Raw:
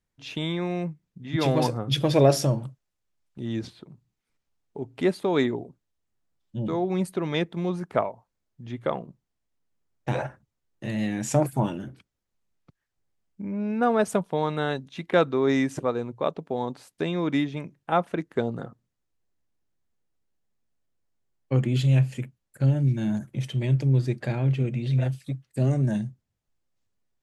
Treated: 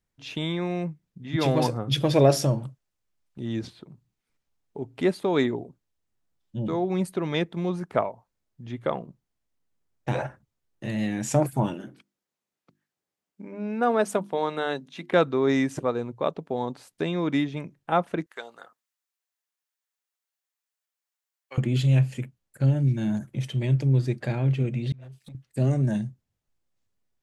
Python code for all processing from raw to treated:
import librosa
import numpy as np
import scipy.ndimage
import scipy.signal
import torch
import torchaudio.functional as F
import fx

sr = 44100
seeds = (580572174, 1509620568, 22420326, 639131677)

y = fx.chain(x, sr, fx.highpass(hz=210.0, slope=12),
    fx.hum_notches(base_hz=50, count=7), at=(11.74, 15.11))
y = fx.chain(y, sr, fx.highpass(hz=1100.0, slope=12),
    fx.high_shelf(hz=8800.0, db=7.0), at=(18.26, 21.58))
y = fx.chain(y, sr, fx.gate_flip(shuts_db=-35.0, range_db=-24),
    fx.over_compress(threshold_db=-50.0, ratio=-1.0),
    fx.leveller(passes=2), at=(24.92, 25.35))